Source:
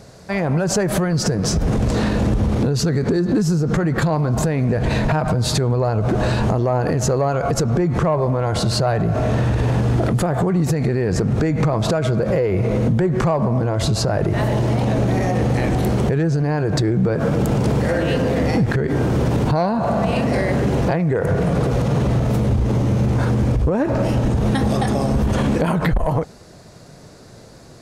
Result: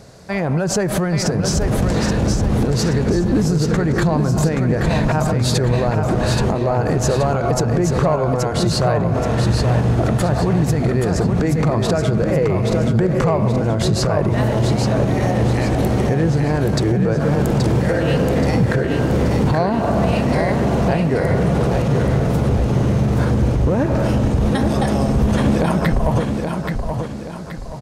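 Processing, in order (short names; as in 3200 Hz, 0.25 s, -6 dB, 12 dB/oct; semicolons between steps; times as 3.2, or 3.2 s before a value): feedback echo 0.827 s, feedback 40%, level -5 dB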